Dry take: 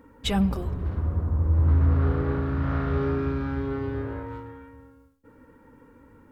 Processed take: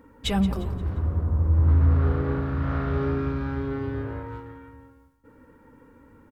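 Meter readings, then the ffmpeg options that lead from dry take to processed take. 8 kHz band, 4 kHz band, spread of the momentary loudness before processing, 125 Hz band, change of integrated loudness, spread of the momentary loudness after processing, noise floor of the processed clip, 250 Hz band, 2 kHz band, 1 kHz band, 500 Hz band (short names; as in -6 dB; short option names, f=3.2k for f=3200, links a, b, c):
n/a, 0.0 dB, 12 LU, +1.0 dB, +0.5 dB, 14 LU, -55 dBFS, 0.0 dB, 0.0 dB, 0.0 dB, -0.5 dB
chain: -af "aecho=1:1:175|350|525|700:0.178|0.0711|0.0285|0.0114"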